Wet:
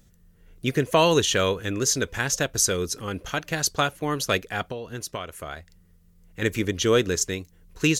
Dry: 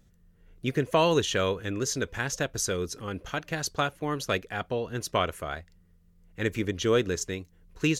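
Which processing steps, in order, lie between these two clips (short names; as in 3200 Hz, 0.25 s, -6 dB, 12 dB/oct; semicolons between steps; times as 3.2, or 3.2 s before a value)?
high shelf 4500 Hz +7.5 dB; 4.65–6.42 compressor 4:1, threshold -35 dBFS, peak gain reduction 12.5 dB; gain +3.5 dB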